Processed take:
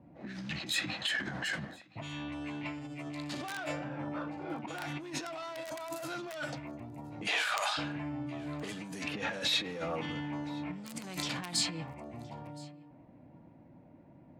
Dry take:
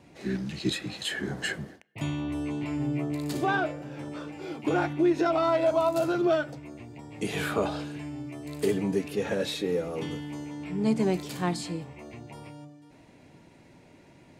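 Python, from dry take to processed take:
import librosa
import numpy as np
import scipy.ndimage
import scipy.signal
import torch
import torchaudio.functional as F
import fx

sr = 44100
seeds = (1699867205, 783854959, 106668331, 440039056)

p1 = fx.peak_eq(x, sr, hz=410.0, db=-14.5, octaves=0.4)
p2 = (np.mod(10.0 ** (17.5 / 20.0) * p1 + 1.0, 2.0) - 1.0) / 10.0 ** (17.5 / 20.0)
p3 = fx.env_lowpass(p2, sr, base_hz=440.0, full_db=-25.0)
p4 = 10.0 ** (-25.0 / 20.0) * np.tanh(p3 / 10.0 ** (-25.0 / 20.0))
p5 = fx.highpass(p4, sr, hz=fx.line((7.26, 320.0), (7.77, 1000.0)), slope=24, at=(7.26, 7.77), fade=0.02)
p6 = fx.over_compress(p5, sr, threshold_db=-38.0, ratio=-1.0)
p7 = fx.tilt_eq(p6, sr, slope=2.5)
p8 = p7 + fx.echo_single(p7, sr, ms=1018, db=-24.0, dry=0)
y = p8 * librosa.db_to_amplitude(2.5)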